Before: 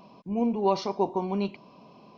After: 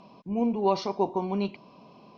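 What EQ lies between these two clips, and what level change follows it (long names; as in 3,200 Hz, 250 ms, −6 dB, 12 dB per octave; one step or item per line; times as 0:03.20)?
high-frequency loss of the air 76 metres
high-shelf EQ 4,200 Hz +5.5 dB
0.0 dB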